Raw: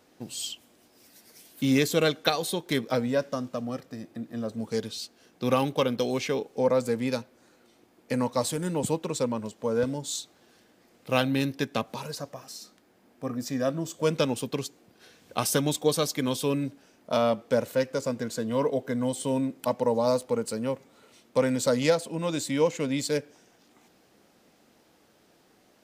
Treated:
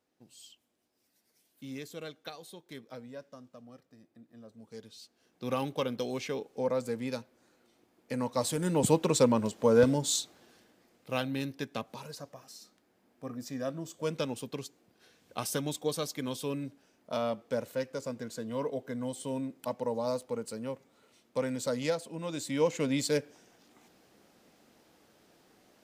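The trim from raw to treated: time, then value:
4.60 s -19 dB
5.64 s -7 dB
8.12 s -7 dB
9.01 s +4 dB
10.06 s +4 dB
11.11 s -8 dB
22.29 s -8 dB
22.81 s -1.5 dB

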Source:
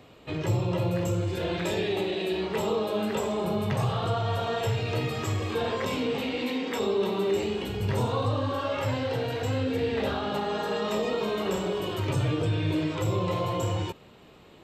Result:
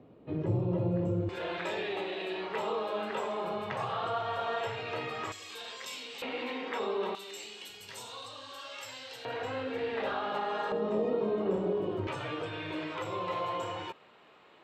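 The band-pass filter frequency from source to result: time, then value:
band-pass filter, Q 0.76
250 Hz
from 1.29 s 1.3 kHz
from 5.32 s 6.7 kHz
from 6.22 s 1.2 kHz
from 7.15 s 6.8 kHz
from 9.25 s 1.2 kHz
from 10.72 s 330 Hz
from 12.07 s 1.4 kHz

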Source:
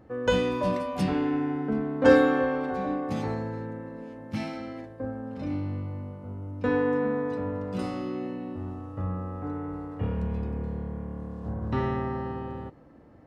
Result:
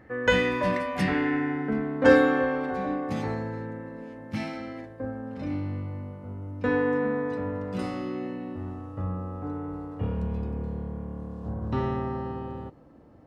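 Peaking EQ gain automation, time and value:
peaking EQ 1.9 kHz 0.63 oct
1.36 s +15 dB
2.15 s +4 dB
8.74 s +4 dB
9.18 s -4.5 dB

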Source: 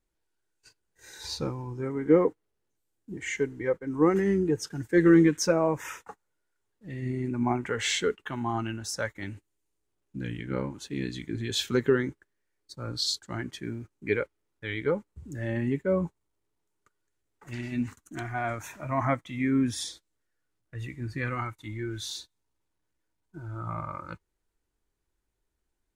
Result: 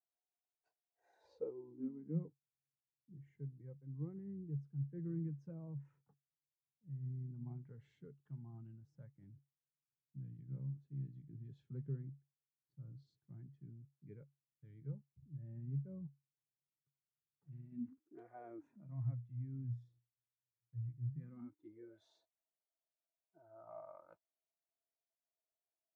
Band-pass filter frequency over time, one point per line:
band-pass filter, Q 15
1.14 s 710 Hz
2.27 s 140 Hz
17.61 s 140 Hz
18.33 s 570 Hz
19.04 s 120 Hz
21.05 s 120 Hz
22.00 s 660 Hz

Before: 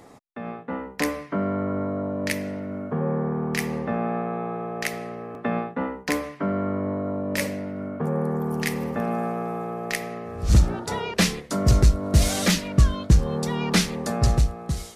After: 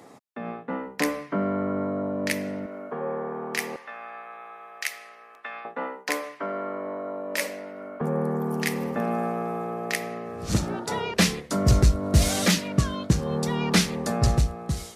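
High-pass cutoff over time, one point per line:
140 Hz
from 2.66 s 420 Hz
from 3.76 s 1.5 kHz
from 5.65 s 480 Hz
from 8.01 s 150 Hz
from 10.96 s 53 Hz
from 12.45 s 120 Hz
from 13.30 s 57 Hz

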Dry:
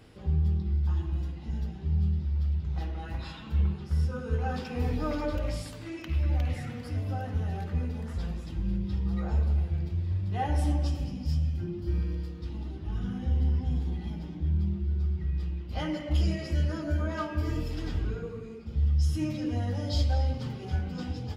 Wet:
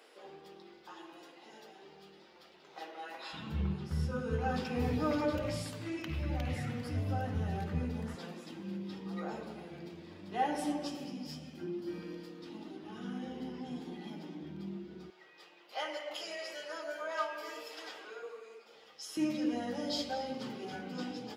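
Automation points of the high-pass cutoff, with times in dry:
high-pass 24 dB/octave
410 Hz
from 3.33 s 97 Hz
from 8.15 s 230 Hz
from 15.10 s 530 Hz
from 19.17 s 220 Hz

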